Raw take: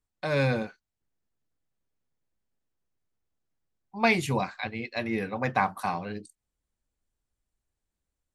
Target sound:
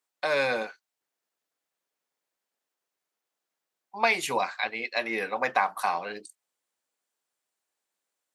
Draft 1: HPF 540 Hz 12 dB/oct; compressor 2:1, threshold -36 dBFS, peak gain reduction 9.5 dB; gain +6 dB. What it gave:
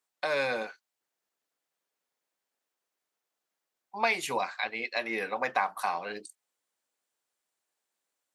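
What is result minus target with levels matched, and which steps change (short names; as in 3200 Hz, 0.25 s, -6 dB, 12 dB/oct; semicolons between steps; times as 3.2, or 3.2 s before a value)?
compressor: peak gain reduction +3.5 dB
change: compressor 2:1, threshold -29 dBFS, peak gain reduction 6 dB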